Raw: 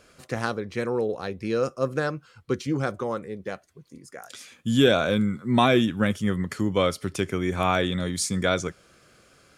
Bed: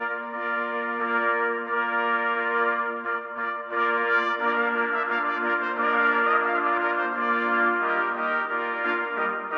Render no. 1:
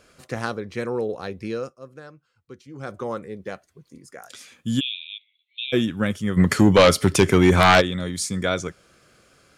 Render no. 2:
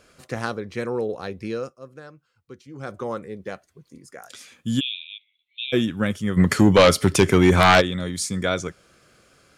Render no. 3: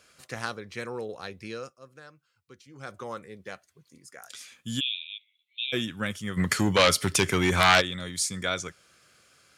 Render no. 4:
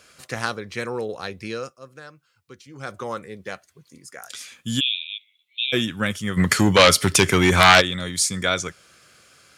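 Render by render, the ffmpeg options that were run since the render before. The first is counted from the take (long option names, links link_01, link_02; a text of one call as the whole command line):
ffmpeg -i in.wav -filter_complex "[0:a]asplit=3[link_01][link_02][link_03];[link_01]afade=type=out:start_time=4.79:duration=0.02[link_04];[link_02]asuperpass=centerf=3100:order=12:qfactor=2.1,afade=type=in:start_time=4.79:duration=0.02,afade=type=out:start_time=5.72:duration=0.02[link_05];[link_03]afade=type=in:start_time=5.72:duration=0.02[link_06];[link_04][link_05][link_06]amix=inputs=3:normalize=0,asplit=3[link_07][link_08][link_09];[link_07]afade=type=out:start_time=6.36:duration=0.02[link_10];[link_08]aeval=exprs='0.422*sin(PI/2*2.82*val(0)/0.422)':channel_layout=same,afade=type=in:start_time=6.36:duration=0.02,afade=type=out:start_time=7.8:duration=0.02[link_11];[link_09]afade=type=in:start_time=7.8:duration=0.02[link_12];[link_10][link_11][link_12]amix=inputs=3:normalize=0,asplit=3[link_13][link_14][link_15];[link_13]atrim=end=1.76,asetpts=PTS-STARTPTS,afade=type=out:start_time=1.43:duration=0.33:silence=0.158489[link_16];[link_14]atrim=start=1.76:end=2.73,asetpts=PTS-STARTPTS,volume=-16dB[link_17];[link_15]atrim=start=2.73,asetpts=PTS-STARTPTS,afade=type=in:duration=0.33:silence=0.158489[link_18];[link_16][link_17][link_18]concat=n=3:v=0:a=1" out.wav
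ffmpeg -i in.wav -filter_complex "[0:a]asettb=1/sr,asplit=3[link_01][link_02][link_03];[link_01]atrim=end=5.024[link_04];[link_02]atrim=start=5.02:end=5.6,asetpts=PTS-STARTPTS,afade=type=in:duration=0.004:curve=qsin,afade=type=out:start_time=0.576:duration=0.004:curve=qsin,bass=frequency=250:gain=6,treble=frequency=4000:gain=-7[link_05];[link_03]atrim=start=5.596[link_06];[link_04][link_05]acrossfade=duration=0.004:curve1=hsin:curve2=qsin[link_07];[link_07][link_06]acrossfade=duration=0.004:curve1=qsin:curve2=hsin" out.wav
ffmpeg -i in.wav -af "highpass=90,equalizer=frequency=290:width=0.31:gain=-10.5" out.wav
ffmpeg -i in.wav -af "volume=7dB,alimiter=limit=-1dB:level=0:latency=1" out.wav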